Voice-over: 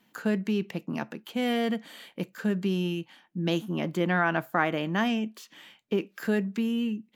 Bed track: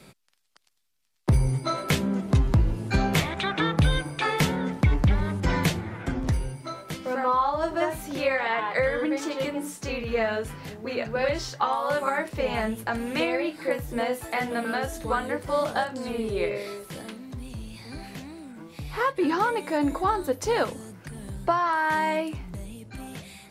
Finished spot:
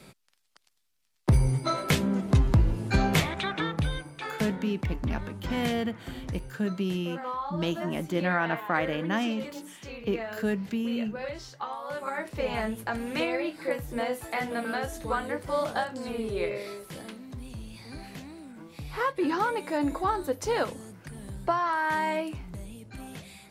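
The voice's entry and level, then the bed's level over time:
4.15 s, -2.0 dB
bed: 3.22 s -0.5 dB
4.12 s -10.5 dB
11.87 s -10.5 dB
12.39 s -3 dB

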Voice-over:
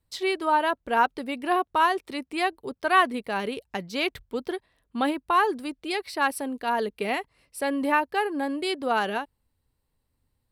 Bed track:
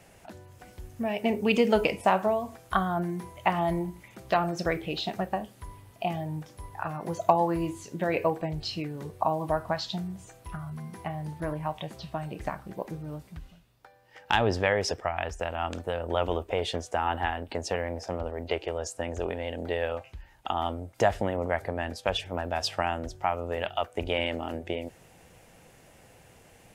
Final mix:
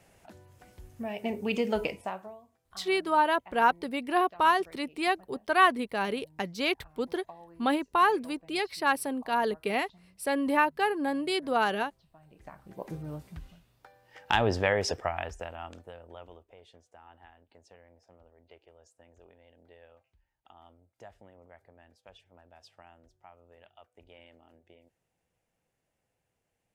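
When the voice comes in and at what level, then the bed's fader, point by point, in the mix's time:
2.65 s, -1.5 dB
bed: 1.87 s -6 dB
2.5 s -26 dB
12.12 s -26 dB
12.94 s -1 dB
15.07 s -1 dB
16.57 s -26.5 dB

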